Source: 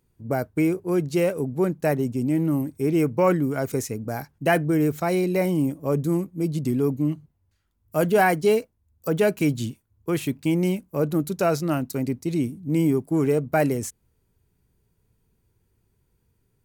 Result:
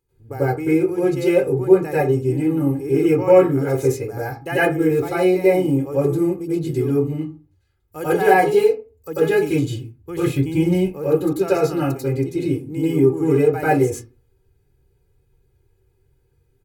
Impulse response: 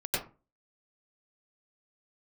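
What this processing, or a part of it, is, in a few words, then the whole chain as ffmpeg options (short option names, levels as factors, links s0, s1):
microphone above a desk: -filter_complex "[0:a]asettb=1/sr,asplit=3[s0][s1][s2];[s0]atrim=end=9.674[s3];[s1]atrim=start=9.67:end=10.77,asetpts=PTS-STARTPTS,afade=t=in:d=0.004:c=qsin,afade=t=out:st=1.096:d=0.004:c=qsin,asubboost=boost=9:cutoff=220[s4];[s2]atrim=start=10.766[s5];[s3][s4]acrossfade=d=0.004:c1=hsin:c2=qsin[s6];[s6][s5]acrossfade=d=0.004:c1=qsin:c2=hsin,aecho=1:1:2.4:0.75[s7];[1:a]atrim=start_sample=2205[s8];[s7][s8]afir=irnorm=-1:irlink=0,volume=0.531"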